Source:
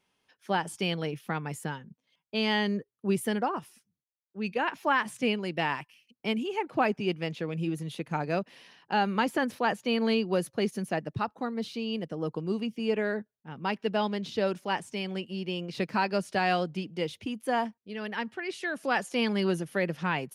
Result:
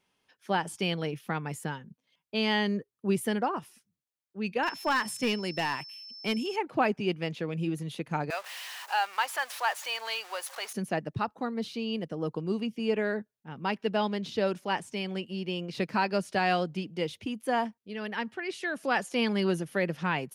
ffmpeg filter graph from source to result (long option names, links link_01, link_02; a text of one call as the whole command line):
ffmpeg -i in.wav -filter_complex "[0:a]asettb=1/sr,asplit=3[link_01][link_02][link_03];[link_01]atrim=end=4.634[link_04];[link_02]atrim=start=4.63:end=6.56,asetpts=PTS-STARTPTS,afade=type=in:duration=0.004:curve=qsin,afade=type=out:start_time=1.926:duration=0.004:curve=qsin,aemphasis=mode=production:type=cd,volume=21.5dB,asoftclip=hard,volume=-21.5dB,aeval=exprs='val(0)+0.00708*sin(2*PI*5300*n/s)':channel_layout=same[link_05];[link_03]atrim=start=6.556[link_06];[link_04][link_05]acrossfade=duration=0.004:curve1=hsin:curve2=qsin[link_07];[link_07][link_06]acrossfade=duration=0.004:curve1=qsin:curve2=hsin,asettb=1/sr,asplit=3[link_08][link_09][link_10];[link_08]atrim=end=8.304[link_11];[link_09]atrim=start=8.3:end=10.73,asetpts=PTS-STARTPTS,afade=type=in:duration=0.004:curve=qsin,afade=type=out:start_time=2.426:duration=0.004:curve=qsin,aeval=exprs='val(0)+0.5*0.015*sgn(val(0))':channel_layout=same,highpass=frequency=750:width=0.5412,highpass=frequency=750:width=1.3066[link_12];[link_10]atrim=start=10.726[link_13];[link_11][link_12]acrossfade=duration=0.004:curve1=hsin:curve2=qsin[link_14];[link_14][link_13]acrossfade=duration=0.004:curve1=qsin:curve2=hsin" out.wav